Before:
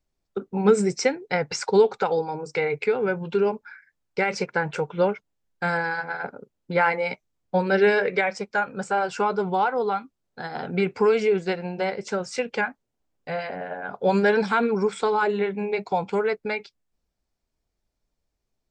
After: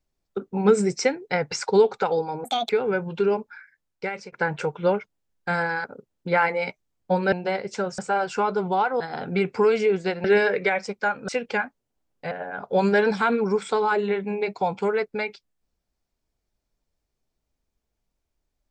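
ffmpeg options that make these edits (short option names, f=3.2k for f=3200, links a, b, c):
-filter_complex "[0:a]asplit=11[a][b][c][d][e][f][g][h][i][j][k];[a]atrim=end=2.444[l];[b]atrim=start=2.44:end=2.84,asetpts=PTS-STARTPTS,asetrate=69678,aresample=44100[m];[c]atrim=start=2.836:end=4.47,asetpts=PTS-STARTPTS,afade=t=out:st=0.774:d=0.86:c=qsin:silence=0.112202[n];[d]atrim=start=4.47:end=5.992,asetpts=PTS-STARTPTS,afade=t=in:d=0.004:c=hsin:silence=0.112202[o];[e]atrim=start=6.278:end=7.762[p];[f]atrim=start=11.658:end=12.322[q];[g]atrim=start=8.798:end=9.822[r];[h]atrim=start=10.418:end=11.662[s];[i]atrim=start=7.758:end=8.802[t];[j]atrim=start=12.318:end=13.352[u];[k]atrim=start=13.618[v];[l][m]acrossfade=d=0.004:c1=hsin:c2=hsin[w];[n][o]concat=n=2:v=0:a=1[x];[w][x]acrossfade=d=0.004:c1=hsin:c2=hsin[y];[y][p]acrossfade=d=0.004:c1=hsin:c2=hsin[z];[z][q]acrossfade=d=0.004:c1=hsin:c2=hsin[aa];[aa][r]acrossfade=d=0.004:c1=hsin:c2=hsin[ab];[ab][s]acrossfade=d=0.004:c1=hsin:c2=hsin[ac];[ac][t]acrossfade=d=0.004:c1=hsin:c2=hsin[ad];[ad][u]acrossfade=d=0.004:c1=hsin:c2=hsin[ae];[ae][v]acrossfade=d=0.004:c1=hsin:c2=hsin"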